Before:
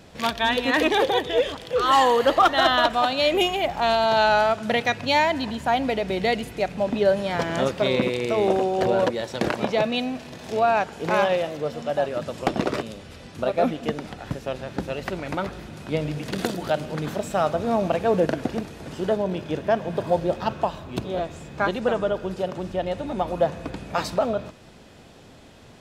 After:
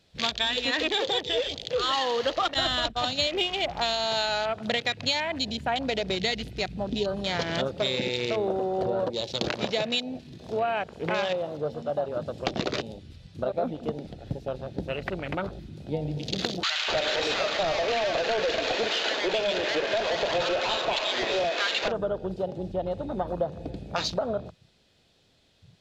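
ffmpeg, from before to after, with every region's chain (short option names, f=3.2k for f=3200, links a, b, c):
-filter_complex "[0:a]asettb=1/sr,asplit=3[a][b][c];[a]atrim=end=2.544[d];[b]atrim=start=2.54:end=3.27,asetpts=PTS-STARTPTS,afade=t=in:d=0.004:c=qsin,afade=t=out:st=0.726:d=0.004:c=qsin,bandreject=f=60:t=h:w=6,bandreject=f=120:t=h:w=6,bandreject=f=180:t=h:w=6,bandreject=f=240:t=h:w=6,agate=range=-33dB:threshold=-22dB:ratio=3:release=100:detection=peak,bass=f=250:g=13,treble=f=4k:g=-1[e];[c]atrim=start=3.266[f];[d][e]acrossfade=d=0.004:c1=hsin:c2=qsin[g];[g][f]acrossfade=d=0.004:c1=qsin:c2=hsin,asettb=1/sr,asplit=3[h][i][j];[h]atrim=end=6.154[k];[i]atrim=start=6.15:end=7.27,asetpts=PTS-STARTPTS,afade=t=in:d=0.004:c=qsin,afade=t=out:st=1.116:d=0.004:c=qsin,equalizer=f=570:t=o:w=0.42:g=-8,aeval=exprs='val(0)+0.00794*(sin(2*PI*60*n/s)+sin(2*PI*2*60*n/s)/2+sin(2*PI*3*60*n/s)/3+sin(2*PI*4*60*n/s)/4+sin(2*PI*5*60*n/s)/5)':c=same[l];[j]atrim=start=7.266[m];[k][l]acrossfade=d=0.004:c1=hsin:c2=qsin[n];[n][m]acrossfade=d=0.004:c1=qsin:c2=hsin,asettb=1/sr,asplit=3[o][p][q];[o]atrim=end=16.634[r];[p]atrim=start=16.63:end=21.88,asetpts=PTS-STARTPTS,afade=t=in:d=0.004:c=qsin,afade=t=out:st=5.246:d=0.004:c=qsin,highpass=530,lowpass=6.3k,asplit=2[s][t];[t]highpass=f=720:p=1,volume=31dB,asoftclip=type=tanh:threshold=-10.5dB[u];[s][u]amix=inputs=2:normalize=0,lowpass=f=1.8k:p=1,volume=-6dB,acrossover=split=1100[v][w];[v]adelay=250[x];[x][w]amix=inputs=2:normalize=0,atrim=end_sample=231525[y];[q]atrim=start=21.876[z];[r][y]acrossfade=d=0.004:c1=hsin:c2=qsin[aa];[aa][z]acrossfade=d=0.004:c1=qsin:c2=hsin,equalizer=f=250:t=o:w=1:g=-4,equalizer=f=1k:t=o:w=1:g=-5,equalizer=f=4k:t=o:w=1:g=10,acompressor=threshold=-23dB:ratio=6,afwtdn=0.02"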